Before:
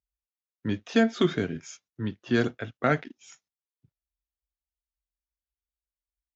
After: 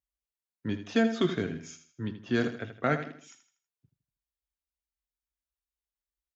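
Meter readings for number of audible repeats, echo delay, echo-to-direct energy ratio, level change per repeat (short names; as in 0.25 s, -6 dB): 3, 80 ms, -10.0 dB, -8.5 dB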